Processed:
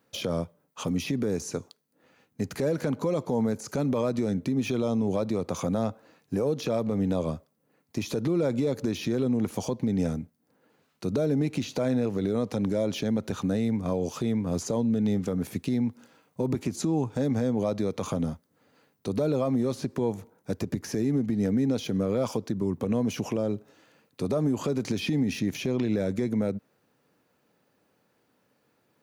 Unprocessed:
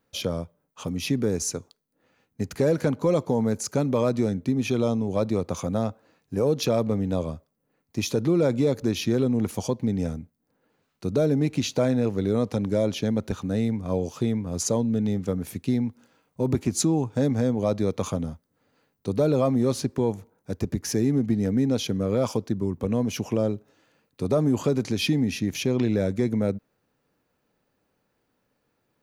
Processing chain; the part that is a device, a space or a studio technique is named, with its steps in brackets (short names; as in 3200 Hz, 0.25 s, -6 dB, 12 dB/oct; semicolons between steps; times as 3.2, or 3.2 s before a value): podcast mastering chain (HPF 110 Hz 12 dB/oct; de-esser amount 90%; compressor, threshold -25 dBFS, peak gain reduction 8 dB; limiter -22 dBFS, peak gain reduction 6.5 dB; gain +4.5 dB; MP3 112 kbps 48000 Hz)